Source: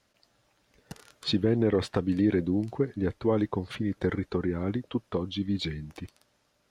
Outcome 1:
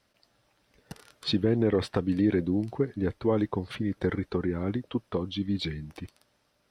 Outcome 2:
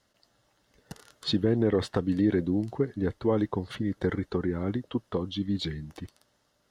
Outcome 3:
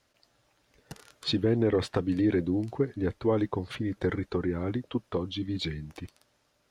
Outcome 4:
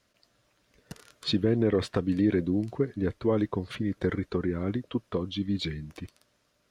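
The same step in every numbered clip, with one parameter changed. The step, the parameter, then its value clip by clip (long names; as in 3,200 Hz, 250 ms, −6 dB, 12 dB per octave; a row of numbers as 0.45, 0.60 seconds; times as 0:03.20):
notch filter, centre frequency: 6,800, 2,400, 200, 830 Hertz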